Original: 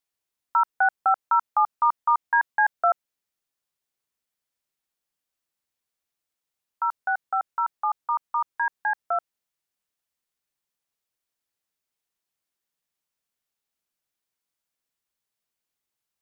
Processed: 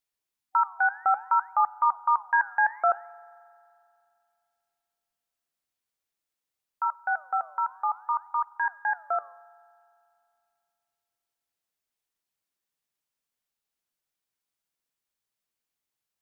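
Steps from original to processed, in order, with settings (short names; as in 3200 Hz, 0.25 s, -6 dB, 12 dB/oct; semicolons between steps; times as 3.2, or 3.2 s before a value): spectral gain 0.35–0.9, 340–770 Hz -10 dB; flange 0.59 Hz, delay 0.1 ms, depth 9.5 ms, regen +89%; spring tank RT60 2.5 s, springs 43 ms, chirp 40 ms, DRR 20 dB; gain +2.5 dB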